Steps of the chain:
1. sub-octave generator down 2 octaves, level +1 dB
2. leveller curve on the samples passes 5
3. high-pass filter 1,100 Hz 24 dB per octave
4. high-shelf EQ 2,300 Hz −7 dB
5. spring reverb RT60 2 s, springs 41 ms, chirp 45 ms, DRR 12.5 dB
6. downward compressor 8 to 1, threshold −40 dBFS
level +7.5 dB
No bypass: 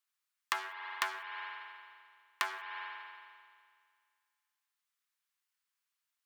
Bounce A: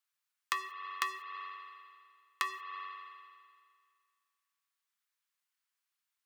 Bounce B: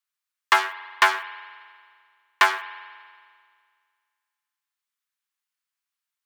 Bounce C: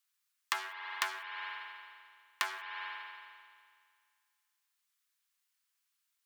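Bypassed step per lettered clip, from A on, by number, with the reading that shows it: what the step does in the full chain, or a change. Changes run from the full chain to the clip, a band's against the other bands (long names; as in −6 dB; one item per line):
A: 1, 500 Hz band −4.5 dB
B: 6, average gain reduction 6.5 dB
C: 4, 500 Hz band −3.0 dB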